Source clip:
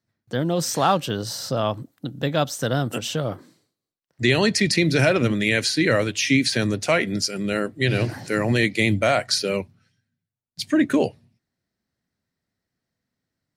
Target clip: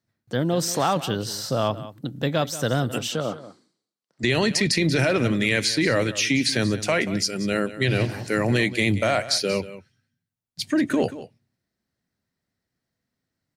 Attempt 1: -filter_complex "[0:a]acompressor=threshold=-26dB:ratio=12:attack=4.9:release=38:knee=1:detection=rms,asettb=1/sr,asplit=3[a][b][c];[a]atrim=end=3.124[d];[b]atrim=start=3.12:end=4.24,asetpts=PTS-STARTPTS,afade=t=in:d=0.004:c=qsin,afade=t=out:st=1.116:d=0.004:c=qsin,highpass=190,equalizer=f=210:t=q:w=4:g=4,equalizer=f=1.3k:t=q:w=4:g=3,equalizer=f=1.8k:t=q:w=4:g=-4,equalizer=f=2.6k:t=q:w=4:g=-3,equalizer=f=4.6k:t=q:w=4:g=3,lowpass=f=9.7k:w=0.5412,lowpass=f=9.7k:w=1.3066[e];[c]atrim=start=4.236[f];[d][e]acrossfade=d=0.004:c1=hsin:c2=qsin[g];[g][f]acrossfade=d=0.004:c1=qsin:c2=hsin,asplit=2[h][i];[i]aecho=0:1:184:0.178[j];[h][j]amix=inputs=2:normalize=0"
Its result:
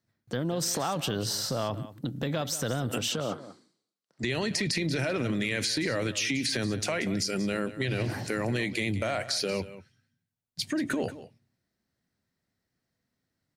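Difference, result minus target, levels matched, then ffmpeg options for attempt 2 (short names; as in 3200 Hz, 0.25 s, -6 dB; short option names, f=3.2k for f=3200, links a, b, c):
compressor: peak gain reduction +8.5 dB
-filter_complex "[0:a]acompressor=threshold=-16.5dB:ratio=12:attack=4.9:release=38:knee=1:detection=rms,asettb=1/sr,asplit=3[a][b][c];[a]atrim=end=3.124[d];[b]atrim=start=3.12:end=4.24,asetpts=PTS-STARTPTS,afade=t=in:d=0.004:c=qsin,afade=t=out:st=1.116:d=0.004:c=qsin,highpass=190,equalizer=f=210:t=q:w=4:g=4,equalizer=f=1.3k:t=q:w=4:g=3,equalizer=f=1.8k:t=q:w=4:g=-4,equalizer=f=2.6k:t=q:w=4:g=-3,equalizer=f=4.6k:t=q:w=4:g=3,lowpass=f=9.7k:w=0.5412,lowpass=f=9.7k:w=1.3066[e];[c]atrim=start=4.236[f];[d][e]acrossfade=d=0.004:c1=hsin:c2=qsin[g];[g][f]acrossfade=d=0.004:c1=qsin:c2=hsin,asplit=2[h][i];[i]aecho=0:1:184:0.178[j];[h][j]amix=inputs=2:normalize=0"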